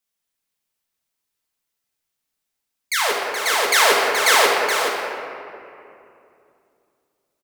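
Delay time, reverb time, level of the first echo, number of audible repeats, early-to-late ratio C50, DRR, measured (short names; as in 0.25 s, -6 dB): 0.424 s, 2.7 s, -7.5 dB, 1, -1.0 dB, -4.0 dB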